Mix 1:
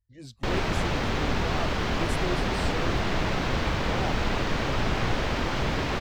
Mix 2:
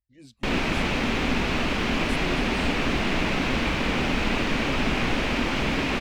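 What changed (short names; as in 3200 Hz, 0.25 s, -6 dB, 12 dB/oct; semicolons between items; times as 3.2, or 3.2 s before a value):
speech -7.5 dB; master: add fifteen-band EQ 100 Hz -6 dB, 250 Hz +8 dB, 2500 Hz +8 dB, 10000 Hz +6 dB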